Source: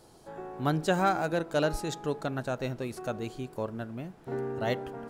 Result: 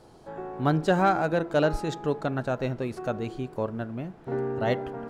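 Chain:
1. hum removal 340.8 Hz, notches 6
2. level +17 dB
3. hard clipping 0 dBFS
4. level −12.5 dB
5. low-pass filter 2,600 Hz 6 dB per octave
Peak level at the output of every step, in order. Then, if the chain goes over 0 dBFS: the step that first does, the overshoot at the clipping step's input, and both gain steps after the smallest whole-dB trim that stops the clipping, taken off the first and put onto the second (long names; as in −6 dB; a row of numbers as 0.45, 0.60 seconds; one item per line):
−13.5, +3.5, 0.0, −12.5, −12.5 dBFS
step 2, 3.5 dB
step 2 +13 dB, step 4 −8.5 dB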